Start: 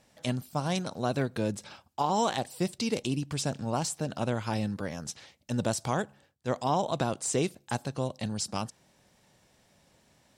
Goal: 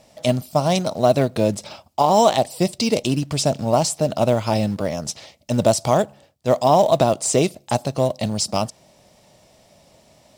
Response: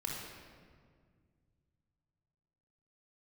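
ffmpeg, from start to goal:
-filter_complex "[0:a]equalizer=f=630:t=o:w=0.33:g=10,equalizer=f=1.6k:t=o:w=0.33:g=-9,equalizer=f=5k:t=o:w=0.33:g=3,asplit=2[a][b];[b]acrusher=bits=3:mode=log:mix=0:aa=0.000001,volume=-10.5dB[c];[a][c]amix=inputs=2:normalize=0,volume=7dB"

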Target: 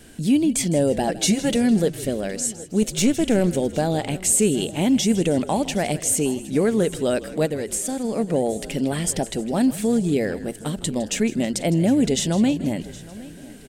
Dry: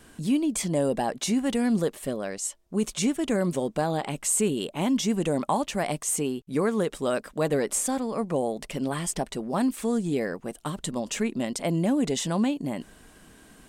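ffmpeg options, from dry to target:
-filter_complex "[0:a]asettb=1/sr,asplit=3[a][b][c];[a]atrim=end=1.074[d];[b]atrim=start=1.07:end=1.56,asetpts=PTS-STARTPTS,afade=t=in:d=0.004:c=qsin,afade=t=out:st=0.486:d=0.004:c=qsin,aecho=1:1:5.9:0.86,atrim=end_sample=21609[e];[c]atrim=start=1.556[f];[d][e]acrossfade=d=0.004:c1=hsin:c2=qsin[g];[g][f]acrossfade=d=0.004:c1=qsin:c2=hsin,asettb=1/sr,asplit=3[h][i][j];[h]atrim=end=2.824[k];[i]atrim=start=2.82:end=3.47,asetpts=PTS-STARTPTS,afade=t=in:d=0.004:c=qsin,afade=t=out:st=0.646:d=0.004:c=qsin,aeval=exprs='0.2*(cos(1*acos(clip(val(0)/0.2,-1,1)))-cos(1*PI/2))+0.0251*(cos(4*acos(clip(val(0)/0.2,-1,1)))-cos(4*PI/2))':c=same[l];[j]atrim=start=3.466[m];[k][l]acrossfade=d=0.004:c1=hsin:c2=qsin[n];[n][m]acrossfade=d=0.004:c1=qsin:c2=hsin,asplit=2[o][p];[p]aecho=0:1:766|1532|2298:0.1|0.041|0.0168[q];[o][q]amix=inputs=2:normalize=0,acontrast=60,equalizer=f=1.1k:t=o:w=0.65:g=-13,asplit=3[r][s][t];[r]afade=t=out:st=7.45:d=0.02[u];[s]acompressor=threshold=-23dB:ratio=6,afade=t=in:st=7.45:d=0.02,afade=t=out:st=8.03:d=0.02[v];[t]afade=t=in:st=8.03:d=0.02[w];[u][v][w]amix=inputs=3:normalize=0,asplit=2[x][y];[y]asplit=4[z][aa][ab][ac];[z]adelay=159,afreqshift=-52,volume=-16dB[ad];[aa]adelay=318,afreqshift=-104,volume=-22.7dB[ae];[ab]adelay=477,afreqshift=-156,volume=-29.5dB[af];[ac]adelay=636,afreqshift=-208,volume=-36.2dB[ag];[ad][ae][af][ag]amix=inputs=4:normalize=0[ah];[x][ah]amix=inputs=2:normalize=0"

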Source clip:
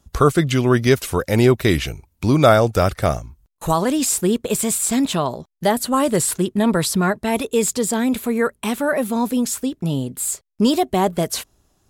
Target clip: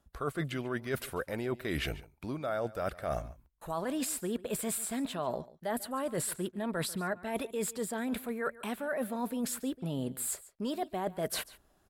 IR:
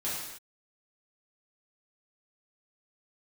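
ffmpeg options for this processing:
-af "equalizer=f=100:t=o:w=0.67:g=-7,equalizer=f=630:t=o:w=0.67:g=5,equalizer=f=1.6k:t=o:w=0.67:g=6,equalizer=f=6.3k:t=o:w=0.67:g=-8,areverse,acompressor=threshold=-25dB:ratio=12,areverse,aecho=1:1:142:0.112,volume=-6dB"

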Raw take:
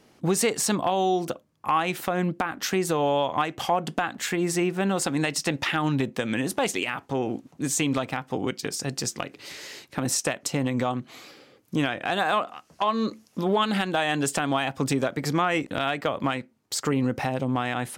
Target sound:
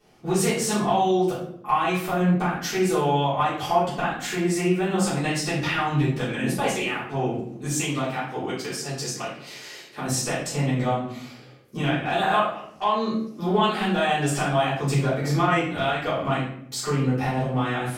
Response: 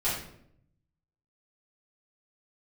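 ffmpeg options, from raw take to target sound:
-filter_complex "[0:a]asettb=1/sr,asplit=3[a][b][c];[a]atrim=end=7.694[d];[b]atrim=start=7.69:end=10.05,asetpts=PTS-STARTPTS,afade=t=in:d=0.004:c=qsin,afade=t=out:st=2.356:d=0.004:c=qsin,highpass=f=250:p=1[e];[c]atrim=start=10.046[f];[d][e]acrossfade=d=0.004:c1=hsin:c2=qsin[g];[g][f]acrossfade=d=0.004:c1=qsin:c2=hsin[h];[1:a]atrim=start_sample=2205[i];[h][i]afir=irnorm=-1:irlink=0,volume=-8dB"

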